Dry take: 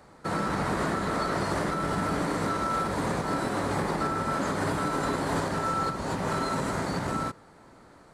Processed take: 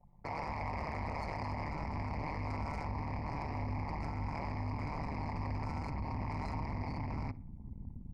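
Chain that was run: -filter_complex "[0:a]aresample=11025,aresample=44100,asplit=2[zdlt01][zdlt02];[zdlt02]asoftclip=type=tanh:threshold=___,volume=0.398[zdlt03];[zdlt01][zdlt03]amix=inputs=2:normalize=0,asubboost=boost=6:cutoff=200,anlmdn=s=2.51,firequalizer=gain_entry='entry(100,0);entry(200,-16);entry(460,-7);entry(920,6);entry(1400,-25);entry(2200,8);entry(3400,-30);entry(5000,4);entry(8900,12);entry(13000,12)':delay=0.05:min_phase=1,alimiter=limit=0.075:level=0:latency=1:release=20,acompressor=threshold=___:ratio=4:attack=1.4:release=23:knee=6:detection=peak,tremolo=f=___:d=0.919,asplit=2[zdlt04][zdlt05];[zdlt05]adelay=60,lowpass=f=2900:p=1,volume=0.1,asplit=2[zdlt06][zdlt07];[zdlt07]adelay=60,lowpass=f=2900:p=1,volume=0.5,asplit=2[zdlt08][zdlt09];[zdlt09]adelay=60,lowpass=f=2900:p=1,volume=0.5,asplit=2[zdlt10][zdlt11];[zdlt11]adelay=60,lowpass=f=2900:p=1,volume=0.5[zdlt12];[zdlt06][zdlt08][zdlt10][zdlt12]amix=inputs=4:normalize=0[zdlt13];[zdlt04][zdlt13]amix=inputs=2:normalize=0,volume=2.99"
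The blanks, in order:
0.0355, 0.00562, 150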